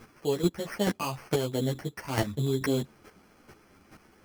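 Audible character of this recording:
aliases and images of a low sample rate 3,700 Hz, jitter 0%
chopped level 2.3 Hz, depth 65%, duty 10%
a shimmering, thickened sound

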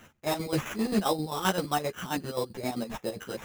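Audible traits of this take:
chopped level 7.6 Hz, depth 65%, duty 50%
aliases and images of a low sample rate 4,500 Hz, jitter 0%
a shimmering, thickened sound

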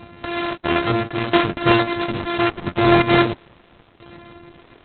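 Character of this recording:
a buzz of ramps at a fixed pitch in blocks of 128 samples
tremolo saw down 0.75 Hz, depth 65%
Opus

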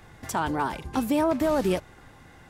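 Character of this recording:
background noise floor −52 dBFS
spectral slope −5.0 dB per octave

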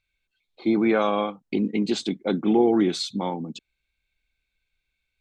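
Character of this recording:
background noise floor −80 dBFS
spectral slope −4.5 dB per octave

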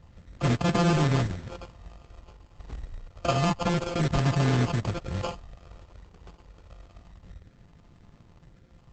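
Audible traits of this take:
a buzz of ramps at a fixed pitch in blocks of 64 samples
phaser sweep stages 8, 0.28 Hz, lowest notch 190–1,200 Hz
aliases and images of a low sample rate 1,900 Hz, jitter 0%
Opus

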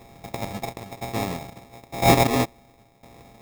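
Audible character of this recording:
a buzz of ramps at a fixed pitch in blocks of 64 samples
tremolo saw down 0.99 Hz, depth 80%
aliases and images of a low sample rate 1,500 Hz, jitter 0%

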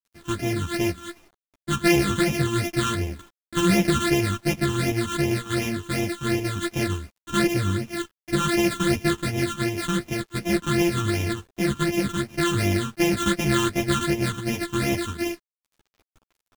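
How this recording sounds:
a buzz of ramps at a fixed pitch in blocks of 128 samples
phaser sweep stages 8, 2.7 Hz, lowest notch 630–1,300 Hz
a quantiser's noise floor 10 bits, dither none
a shimmering, thickened sound

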